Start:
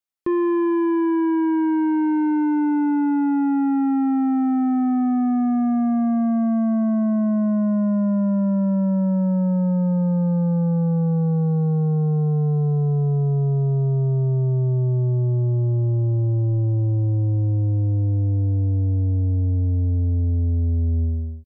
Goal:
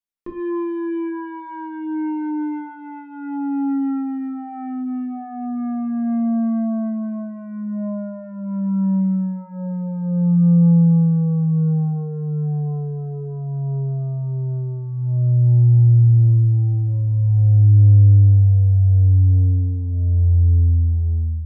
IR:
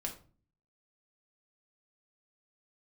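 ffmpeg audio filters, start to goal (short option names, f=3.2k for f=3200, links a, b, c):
-filter_complex "[0:a]asubboost=boost=9:cutoff=90[a];[1:a]atrim=start_sample=2205,atrim=end_sample=6174[b];[a][b]afir=irnorm=-1:irlink=0,volume=-4.5dB"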